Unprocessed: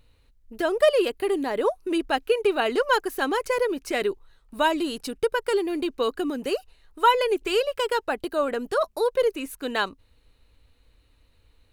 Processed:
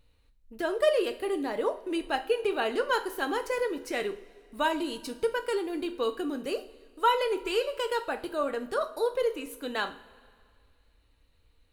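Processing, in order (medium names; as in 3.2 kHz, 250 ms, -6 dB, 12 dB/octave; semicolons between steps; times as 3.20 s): two-slope reverb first 0.38 s, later 2.1 s, from -18 dB, DRR 6.5 dB; trim -6 dB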